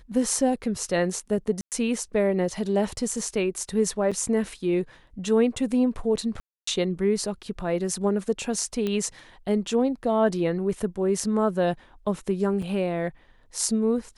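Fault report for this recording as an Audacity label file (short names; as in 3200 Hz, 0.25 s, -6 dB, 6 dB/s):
1.610000	1.720000	gap 0.108 s
4.110000	4.120000	gap 6.2 ms
6.400000	6.670000	gap 0.274 s
8.870000	8.870000	pop -16 dBFS
12.620000	12.620000	gap 4.7 ms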